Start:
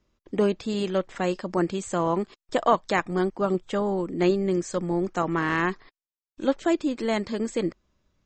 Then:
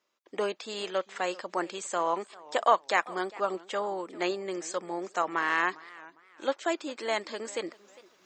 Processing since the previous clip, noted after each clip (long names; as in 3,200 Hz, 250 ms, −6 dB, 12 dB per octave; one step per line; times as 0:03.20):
high-pass filter 620 Hz 12 dB per octave
reversed playback
upward compression, threshold −51 dBFS
reversed playback
feedback echo with a swinging delay time 399 ms, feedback 31%, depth 168 cents, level −21 dB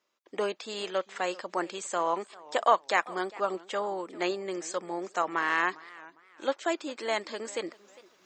no processing that can be heard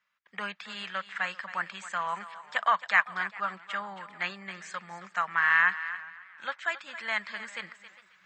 drawn EQ curve 200 Hz 0 dB, 300 Hz −26 dB, 1,700 Hz +8 dB, 6,000 Hz −10 dB
feedback echo with a high-pass in the loop 270 ms, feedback 23%, high-pass 520 Hz, level −13 dB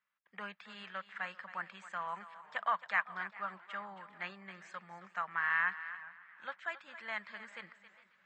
high-shelf EQ 3,600 Hz −11.5 dB
feedback echo with a swinging delay time 426 ms, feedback 47%, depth 94 cents, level −23.5 dB
level −7 dB